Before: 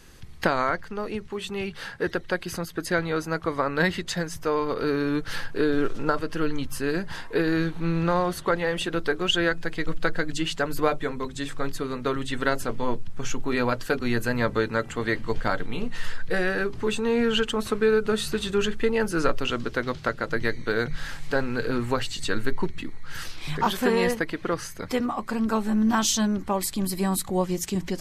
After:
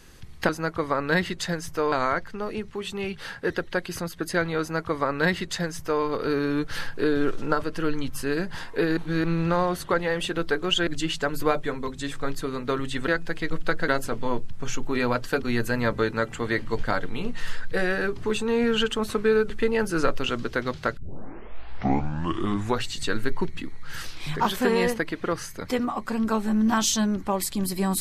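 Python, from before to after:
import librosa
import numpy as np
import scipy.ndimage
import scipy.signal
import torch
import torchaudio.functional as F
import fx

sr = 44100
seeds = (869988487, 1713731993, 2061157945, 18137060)

y = fx.edit(x, sr, fx.duplicate(start_s=3.17, length_s=1.43, to_s=0.49),
    fx.reverse_span(start_s=7.54, length_s=0.27),
    fx.move(start_s=9.44, length_s=0.8, to_s=12.45),
    fx.cut(start_s=18.07, length_s=0.64),
    fx.tape_start(start_s=20.18, length_s=1.89), tone=tone)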